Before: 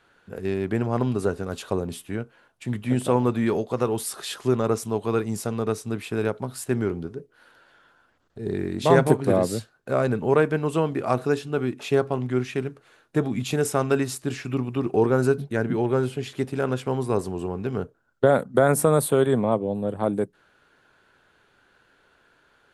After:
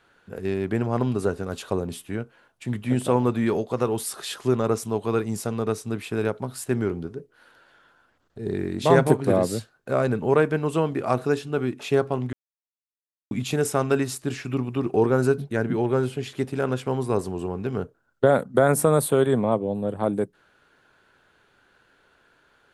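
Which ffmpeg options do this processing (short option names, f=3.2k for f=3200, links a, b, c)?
-filter_complex "[0:a]asplit=3[a][b][c];[a]atrim=end=12.33,asetpts=PTS-STARTPTS,afade=t=out:st=12.326:d=0.004:c=hsin[d];[b]atrim=start=12.33:end=13.31,asetpts=PTS-STARTPTS,volume=0[e];[c]atrim=start=13.31,asetpts=PTS-STARTPTS,afade=t=in:d=0.004:c=hsin[f];[d][e][f]concat=n=3:v=0:a=1"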